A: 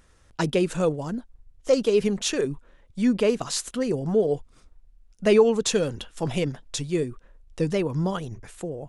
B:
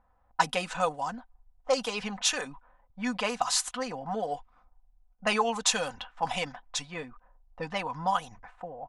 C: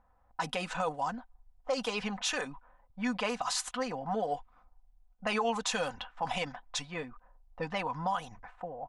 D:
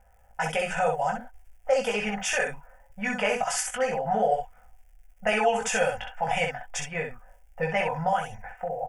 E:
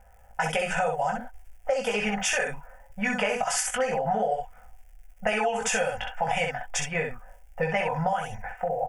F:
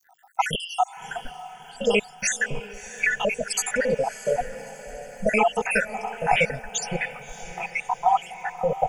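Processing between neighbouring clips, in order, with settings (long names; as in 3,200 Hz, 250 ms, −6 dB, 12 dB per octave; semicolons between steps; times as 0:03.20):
low shelf with overshoot 570 Hz −12 dB, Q 3; comb filter 4 ms, depth 53%; low-pass that shuts in the quiet parts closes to 620 Hz, open at −25.5 dBFS
high-shelf EQ 5,400 Hz −6.5 dB; brickwall limiter −21.5 dBFS, peak gain reduction 11.5 dB
surface crackle 110 per second −58 dBFS; phaser with its sweep stopped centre 1,100 Hz, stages 6; on a send: ambience of single reflections 19 ms −3.5 dB, 64 ms −4.5 dB; on the sum: level +8 dB
downward compressor 6 to 1, threshold −27 dBFS, peak gain reduction 10 dB; level +4.5 dB
time-frequency cells dropped at random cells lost 77%; feedback delay with all-pass diffusion 628 ms, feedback 51%, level −14 dB; surface crackle 64 per second −63 dBFS; level +8 dB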